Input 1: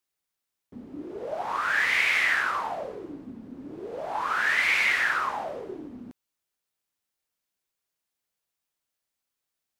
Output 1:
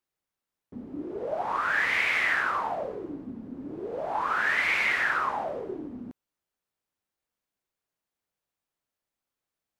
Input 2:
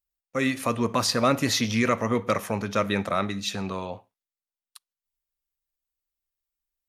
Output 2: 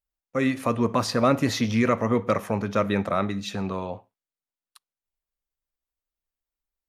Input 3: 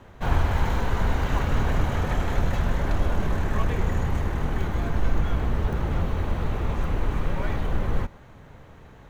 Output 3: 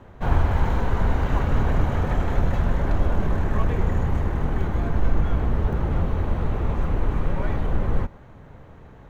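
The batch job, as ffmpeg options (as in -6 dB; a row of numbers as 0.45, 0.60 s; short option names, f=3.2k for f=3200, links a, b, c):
-af "highshelf=f=2.1k:g=-9.5,volume=2.5dB"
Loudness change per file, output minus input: -2.0, +1.0, +2.0 LU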